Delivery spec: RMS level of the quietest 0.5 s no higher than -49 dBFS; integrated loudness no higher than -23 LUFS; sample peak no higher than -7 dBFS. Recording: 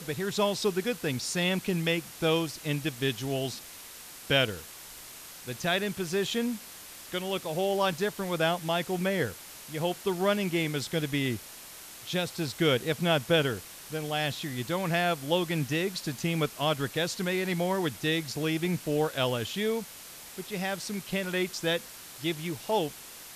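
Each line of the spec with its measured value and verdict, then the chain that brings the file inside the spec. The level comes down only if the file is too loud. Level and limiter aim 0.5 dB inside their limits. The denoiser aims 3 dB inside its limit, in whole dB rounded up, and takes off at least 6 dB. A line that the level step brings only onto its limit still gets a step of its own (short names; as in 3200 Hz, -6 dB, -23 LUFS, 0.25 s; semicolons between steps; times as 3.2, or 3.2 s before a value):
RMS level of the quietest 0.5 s -46 dBFS: fail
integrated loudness -29.5 LUFS: OK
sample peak -11.5 dBFS: OK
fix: denoiser 6 dB, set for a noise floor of -46 dBFS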